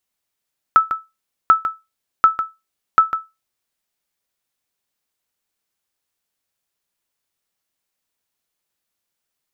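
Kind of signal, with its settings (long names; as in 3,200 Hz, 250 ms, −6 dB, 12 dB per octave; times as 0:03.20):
ping with an echo 1,310 Hz, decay 0.22 s, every 0.74 s, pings 4, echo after 0.15 s, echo −10 dB −2.5 dBFS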